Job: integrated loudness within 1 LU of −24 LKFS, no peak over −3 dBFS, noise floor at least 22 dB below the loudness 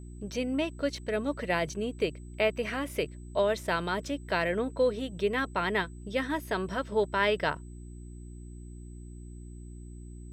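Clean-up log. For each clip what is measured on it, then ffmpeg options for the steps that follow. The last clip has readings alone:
mains hum 60 Hz; hum harmonics up to 360 Hz; level of the hum −41 dBFS; interfering tone 8,000 Hz; level of the tone −61 dBFS; integrated loudness −30.5 LKFS; sample peak −13.0 dBFS; target loudness −24.0 LKFS
→ -af "bandreject=frequency=60:width_type=h:width=4,bandreject=frequency=120:width_type=h:width=4,bandreject=frequency=180:width_type=h:width=4,bandreject=frequency=240:width_type=h:width=4,bandreject=frequency=300:width_type=h:width=4,bandreject=frequency=360:width_type=h:width=4"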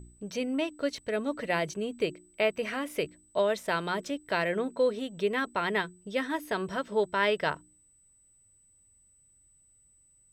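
mains hum none found; interfering tone 8,000 Hz; level of the tone −61 dBFS
→ -af "bandreject=frequency=8000:width=30"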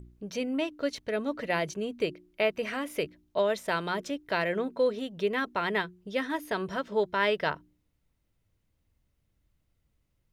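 interfering tone none found; integrated loudness −30.5 LKFS; sample peak −13.0 dBFS; target loudness −24.0 LKFS
→ -af "volume=6.5dB"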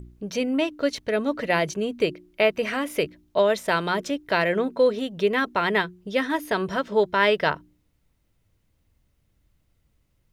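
integrated loudness −24.0 LKFS; sample peak −6.5 dBFS; background noise floor −69 dBFS

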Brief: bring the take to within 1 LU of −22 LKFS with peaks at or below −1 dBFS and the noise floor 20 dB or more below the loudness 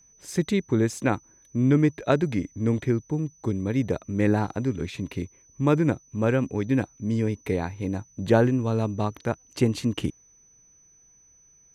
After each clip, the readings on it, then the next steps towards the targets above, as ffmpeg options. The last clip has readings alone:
interfering tone 6,000 Hz; level of the tone −55 dBFS; integrated loudness −26.0 LKFS; sample peak −6.5 dBFS; target loudness −22.0 LKFS
→ -af "bandreject=frequency=6000:width=30"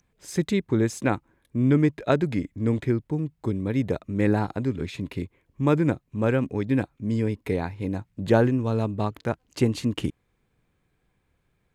interfering tone none found; integrated loudness −26.0 LKFS; sample peak −6.5 dBFS; target loudness −22.0 LKFS
→ -af "volume=4dB"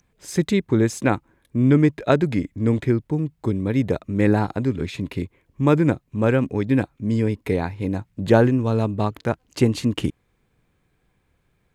integrated loudness −22.0 LKFS; sample peak −2.5 dBFS; background noise floor −68 dBFS

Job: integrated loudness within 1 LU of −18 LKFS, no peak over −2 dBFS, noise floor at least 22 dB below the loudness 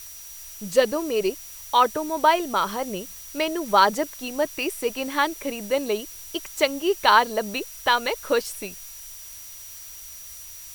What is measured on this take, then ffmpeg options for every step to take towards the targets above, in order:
interfering tone 5,800 Hz; level of the tone −44 dBFS; background noise floor −41 dBFS; target noise floor −46 dBFS; integrated loudness −23.5 LKFS; sample peak −3.5 dBFS; target loudness −18.0 LKFS
→ -af "bandreject=frequency=5800:width=30"
-af "afftdn=noise_reduction=6:noise_floor=-41"
-af "volume=5.5dB,alimiter=limit=-2dB:level=0:latency=1"

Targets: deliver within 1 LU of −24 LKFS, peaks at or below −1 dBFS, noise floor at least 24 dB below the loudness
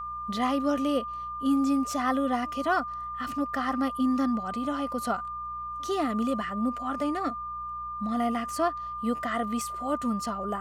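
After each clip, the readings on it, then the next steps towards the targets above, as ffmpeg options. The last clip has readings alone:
mains hum 60 Hz; hum harmonics up to 180 Hz; level of the hum −50 dBFS; interfering tone 1,200 Hz; level of the tone −33 dBFS; integrated loudness −29.0 LKFS; sample peak −14.0 dBFS; target loudness −24.0 LKFS
→ -af "bandreject=frequency=60:width_type=h:width=4,bandreject=frequency=120:width_type=h:width=4,bandreject=frequency=180:width_type=h:width=4"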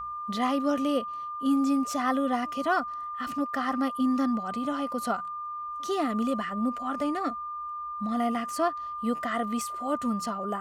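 mains hum none found; interfering tone 1,200 Hz; level of the tone −33 dBFS
→ -af "bandreject=frequency=1200:width=30"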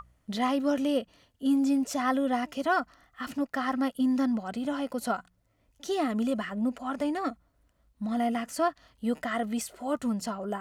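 interfering tone none found; integrated loudness −30.0 LKFS; sample peak −15.0 dBFS; target loudness −24.0 LKFS
→ -af "volume=6dB"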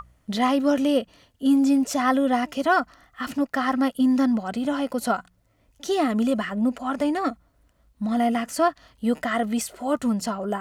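integrated loudness −24.0 LKFS; sample peak −9.0 dBFS; background noise floor −65 dBFS

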